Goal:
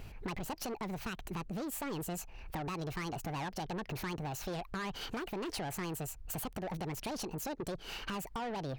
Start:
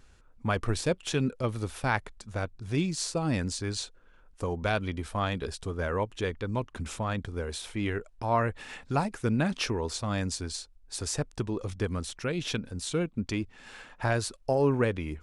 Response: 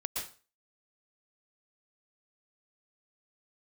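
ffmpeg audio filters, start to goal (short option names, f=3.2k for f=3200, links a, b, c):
-af "equalizer=f=5.2k:t=o:w=2:g=-8.5,asetrate=76440,aresample=44100,alimiter=limit=-23.5dB:level=0:latency=1:release=168,asoftclip=type=tanh:threshold=-36dB,acompressor=threshold=-49dB:ratio=4,volume=10dB"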